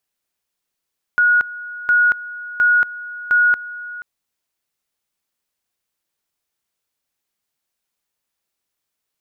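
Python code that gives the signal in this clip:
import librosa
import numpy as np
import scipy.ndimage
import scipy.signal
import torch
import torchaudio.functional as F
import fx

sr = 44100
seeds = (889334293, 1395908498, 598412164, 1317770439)

y = fx.two_level_tone(sr, hz=1450.0, level_db=-10.5, drop_db=17.5, high_s=0.23, low_s=0.48, rounds=4)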